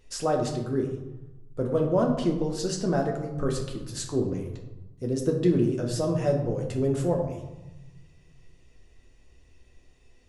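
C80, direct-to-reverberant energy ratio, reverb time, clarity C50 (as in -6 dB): 8.5 dB, 0.0 dB, 1.1 s, 6.5 dB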